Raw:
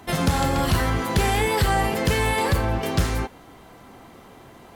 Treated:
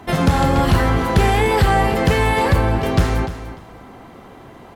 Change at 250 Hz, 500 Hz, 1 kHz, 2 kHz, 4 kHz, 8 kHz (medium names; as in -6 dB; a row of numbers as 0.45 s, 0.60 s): +6.0 dB, +6.0 dB, +5.5 dB, +4.0 dB, +1.5 dB, -1.5 dB